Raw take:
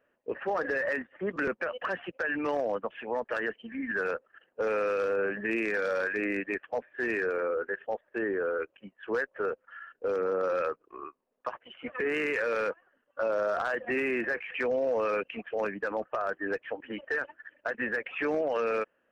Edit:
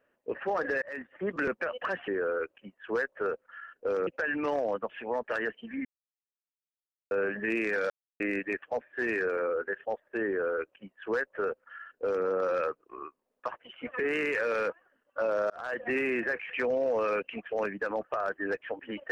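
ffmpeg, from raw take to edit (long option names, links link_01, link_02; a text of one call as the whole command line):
ffmpeg -i in.wav -filter_complex "[0:a]asplit=9[link_01][link_02][link_03][link_04][link_05][link_06][link_07][link_08][link_09];[link_01]atrim=end=0.82,asetpts=PTS-STARTPTS,afade=type=out:start_time=0.816:duration=0.004:curve=hsin[link_10];[link_02]atrim=start=0.82:end=2.082,asetpts=PTS-STARTPTS,afade=type=in:duration=0.29[link_11];[link_03]atrim=start=8.268:end=10.262[link_12];[link_04]atrim=start=2.078:end=3.86,asetpts=PTS-STARTPTS,afade=type=out:start_time=1.778:duration=0.004:curve=hsin[link_13];[link_05]atrim=start=3.86:end=5.12,asetpts=PTS-STARTPTS,volume=0[link_14];[link_06]atrim=start=5.12:end=5.91,asetpts=PTS-STARTPTS,afade=type=in:duration=0.004:curve=hsin,afade=type=out:start_time=0.786:duration=0.004:curve=hsin[link_15];[link_07]atrim=start=5.91:end=6.21,asetpts=PTS-STARTPTS,volume=0[link_16];[link_08]atrim=start=6.21:end=13.51,asetpts=PTS-STARTPTS,afade=type=in:duration=0.004:curve=hsin,afade=type=out:start_time=7.296:duration=0.004:curve=hsin[link_17];[link_09]atrim=start=13.51,asetpts=PTS-STARTPTS,afade=type=in:duration=0.31[link_18];[link_10][link_11]concat=n=2:v=0:a=1[link_19];[link_19][link_12]acrossfade=duration=0.004:curve1=hsin:curve2=hsin[link_20];[link_13][link_14][link_15][link_16][link_17][link_18]concat=n=6:v=0:a=1[link_21];[link_20][link_21]acrossfade=duration=0.004:curve1=hsin:curve2=hsin" out.wav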